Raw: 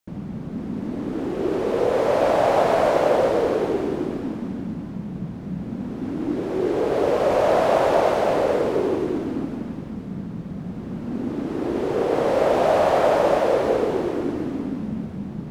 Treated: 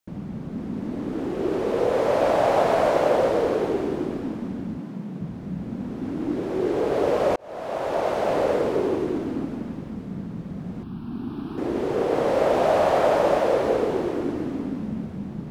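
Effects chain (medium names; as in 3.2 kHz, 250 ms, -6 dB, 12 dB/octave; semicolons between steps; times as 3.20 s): 4.77–5.21 s: high-pass 140 Hz 24 dB/octave; 7.36–8.43 s: fade in; 10.83–11.58 s: static phaser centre 2 kHz, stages 6; trim -1.5 dB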